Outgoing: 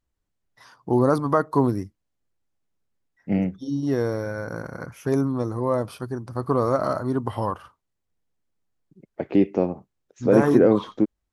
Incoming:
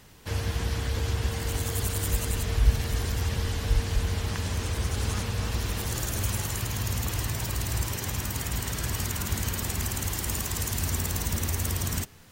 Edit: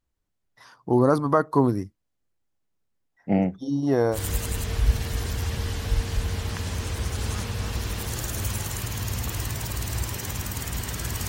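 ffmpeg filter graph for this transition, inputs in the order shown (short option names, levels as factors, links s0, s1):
-filter_complex "[0:a]asettb=1/sr,asplit=3[s0][s1][s2];[s0]atrim=end=3.124[s3];[s1]atrim=start=3.12:end=4.19,asetpts=PTS-STARTPTS,afade=t=in:d=0.004:c=qsin,afade=t=out:st=1.066:d=0.004:c=qsin,equalizer=f=760:t=o:w=0.84:g=10[s4];[s2]atrim=start=4.186[s5];[s3][s4]acrossfade=d=0.004:c1=hsin:c2=qsin[s6];[s6][s5]acrossfade=d=0.004:c1=qsin:c2=hsin,apad=whole_dur=11.28,atrim=end=11.28,atrim=end=4.19,asetpts=PTS-STARTPTS[s7];[1:a]atrim=start=1.9:end=9.07,asetpts=PTS-STARTPTS[s8];[s7][s8]acrossfade=d=0.08:c1=tri:c2=tri"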